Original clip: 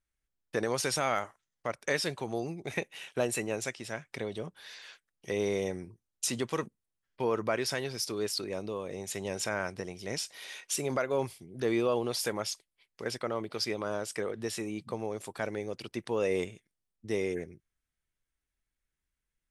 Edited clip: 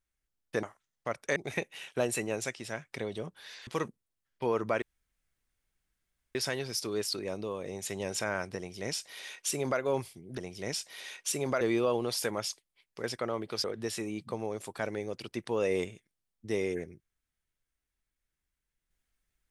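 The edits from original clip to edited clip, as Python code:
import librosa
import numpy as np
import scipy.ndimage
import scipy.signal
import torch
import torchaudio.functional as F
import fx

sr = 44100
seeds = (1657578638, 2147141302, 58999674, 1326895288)

y = fx.edit(x, sr, fx.cut(start_s=0.63, length_s=0.59),
    fx.cut(start_s=1.95, length_s=0.61),
    fx.cut(start_s=4.87, length_s=1.58),
    fx.insert_room_tone(at_s=7.6, length_s=1.53),
    fx.duplicate(start_s=9.82, length_s=1.23, to_s=11.63),
    fx.cut(start_s=13.66, length_s=0.58), tone=tone)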